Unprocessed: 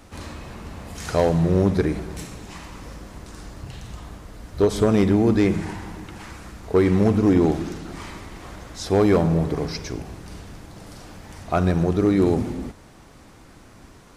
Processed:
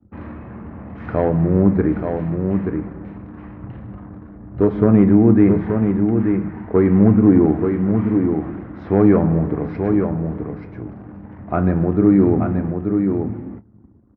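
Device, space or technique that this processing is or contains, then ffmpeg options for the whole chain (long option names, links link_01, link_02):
bass cabinet: -filter_complex "[0:a]anlmdn=0.251,highpass=frequency=60:width=0.5412,highpass=frequency=60:width=1.3066,equalizer=frequency=110:width_type=q:width=4:gain=6,equalizer=frequency=210:width_type=q:width=4:gain=8,equalizer=frequency=310:width_type=q:width=4:gain=5,lowpass=frequency=2000:width=0.5412,lowpass=frequency=2000:width=1.3066,adynamicequalizer=threshold=0.00501:dfrequency=3500:dqfactor=2:tfrequency=3500:tqfactor=2:attack=5:release=100:ratio=0.375:range=2:mode=cutabove:tftype=bell,asplit=2[link_01][link_02];[link_02]adelay=26,volume=-13dB[link_03];[link_01][link_03]amix=inputs=2:normalize=0,aecho=1:1:880:0.531"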